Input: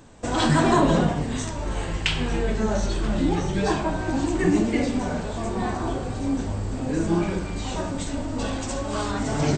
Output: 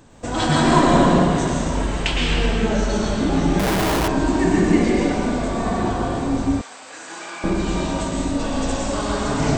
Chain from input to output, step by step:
convolution reverb RT60 2.2 s, pre-delay 103 ms, DRR −3.5 dB
0:03.59–0:04.08: comparator with hysteresis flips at −28.5 dBFS
0:06.61–0:07.44: high-pass filter 1,200 Hz 12 dB per octave

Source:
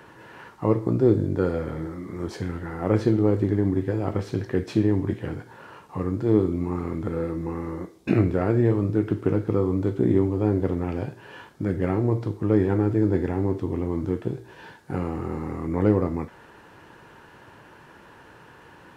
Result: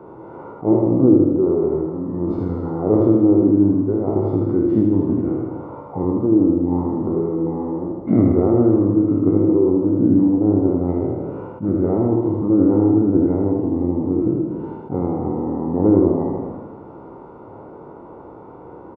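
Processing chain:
peak hold with a decay on every bin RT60 1.23 s
parametric band 480 Hz +9 dB 2 octaves
formants moved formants −3 semitones
in parallel at −0.5 dB: downward compressor, threshold −25 dBFS, peak gain reduction 17.5 dB
on the sum: Savitzky-Golay smoothing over 65 samples
on a send: repeating echo 79 ms, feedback 57%, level −5 dB
on the sum: level that may rise only so fast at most 300 dB per second
level −4.5 dB

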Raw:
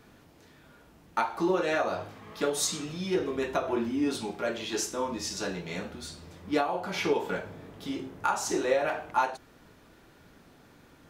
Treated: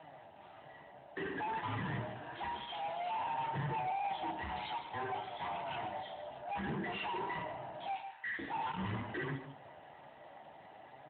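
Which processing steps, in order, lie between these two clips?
neighbouring bands swapped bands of 500 Hz
0:06.68–0:07.43: comb filter 5.1 ms, depth 50%
0:07.94–0:08.39: high-pass filter 1,300 Hz 24 dB per octave
brickwall limiter −24 dBFS, peak gain reduction 10.5 dB
flanger 0.54 Hz, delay 6.1 ms, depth 9.5 ms, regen +49%
tube saturation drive 42 dB, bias 0.25
0:02.39–0:02.82: wrap-around overflow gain 40.5 dB
high-frequency loss of the air 70 metres
single-tap delay 149 ms −11 dB
convolution reverb RT60 0.70 s, pre-delay 7 ms, DRR 14.5 dB
level +7 dB
AMR narrowband 12.2 kbit/s 8,000 Hz

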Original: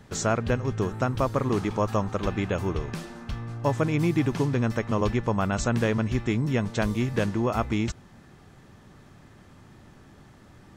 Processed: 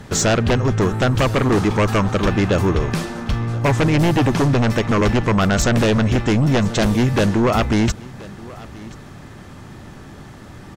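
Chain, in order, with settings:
sine wavefolder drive 9 dB, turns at −11.5 dBFS
on a send: single-tap delay 1,029 ms −20.5 dB

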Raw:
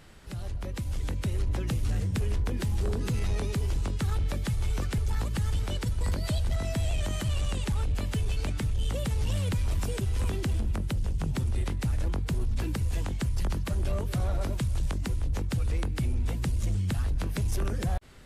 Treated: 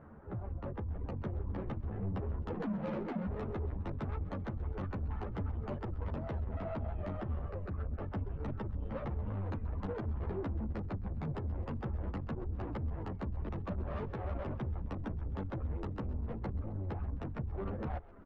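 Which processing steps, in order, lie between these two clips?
low-pass filter 1,200 Hz 24 dB per octave
reverb reduction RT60 0.54 s
high-pass filter 110 Hz 6 dB per octave
0:02.54–0:03.27: frequency shifter +120 Hz
0:07.47–0:08.01: phaser with its sweep stopped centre 910 Hz, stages 6
0:17.20–0:17.64: downward compressor, threshold −34 dBFS, peak gain reduction 6 dB
soft clipping −39 dBFS, distortion −8 dB
echo with shifted repeats 131 ms, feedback 54%, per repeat −45 Hz, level −18 dB
string-ensemble chorus
level +7 dB

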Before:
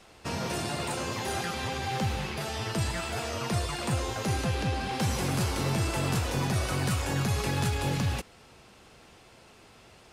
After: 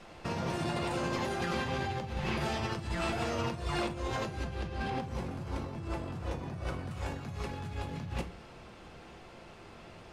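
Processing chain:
low-pass filter 2,600 Hz 6 dB per octave, from 0:04.90 1,200 Hz, from 0:06.91 2,300 Hz
compressor whose output falls as the input rises −36 dBFS, ratio −1
rectangular room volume 220 cubic metres, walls furnished, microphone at 0.84 metres
level −1.5 dB

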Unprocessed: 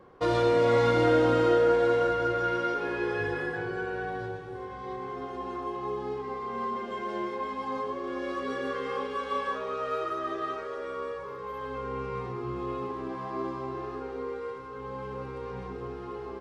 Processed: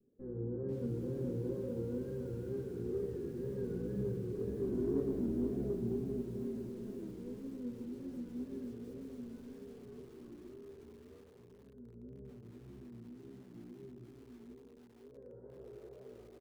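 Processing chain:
lower of the sound and its delayed copy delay 0.6 ms
source passing by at 0:04.83, 19 m/s, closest 8.3 metres
tuned comb filter 62 Hz, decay 0.61 s, harmonics all, mix 70%
repeating echo 776 ms, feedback 37%, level −22.5 dB
low-pass filter sweep 230 Hz → 610 Hz, 0:14.86–0:15.37
hollow resonant body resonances 430/1,600 Hz, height 13 dB, ringing for 25 ms
tape wow and flutter 130 cents
convolution reverb RT60 1.8 s, pre-delay 6 ms, DRR 1.5 dB
in parallel at −5 dB: soft clipping −36.5 dBFS, distortion −18 dB
on the sum: feedback echo at a low word length 492 ms, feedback 35%, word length 10 bits, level −9.5 dB
level +3.5 dB

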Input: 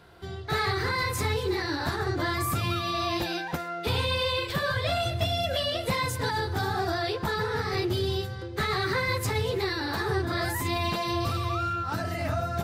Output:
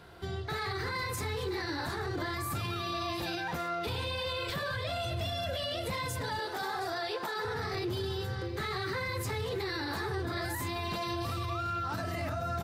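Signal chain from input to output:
0:06.39–0:07.45: high-pass filter 420 Hz 12 dB per octave
brickwall limiter −28 dBFS, peak gain reduction 11 dB
single-tap delay 721 ms −14.5 dB
level +1 dB

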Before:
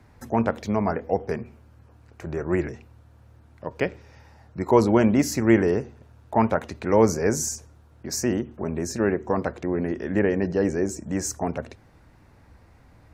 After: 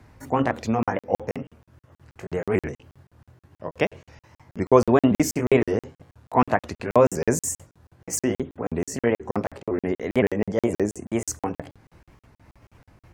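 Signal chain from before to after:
pitch shifter swept by a sawtooth +3.5 semitones, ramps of 511 ms
regular buffer underruns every 0.16 s, samples 2,048, zero, from 0:00.83
level +2.5 dB

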